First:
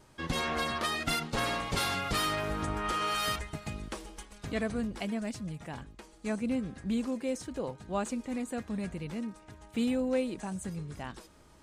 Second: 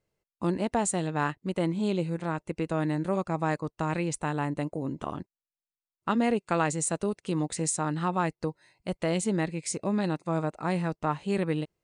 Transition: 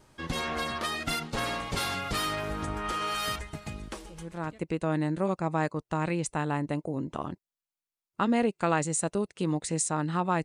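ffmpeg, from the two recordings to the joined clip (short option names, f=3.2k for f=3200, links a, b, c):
-filter_complex "[0:a]apad=whole_dur=10.44,atrim=end=10.44,atrim=end=4.61,asetpts=PTS-STARTPTS[a];[1:a]atrim=start=1.95:end=8.32,asetpts=PTS-STARTPTS[b];[a][b]acrossfade=d=0.54:c1=tri:c2=tri"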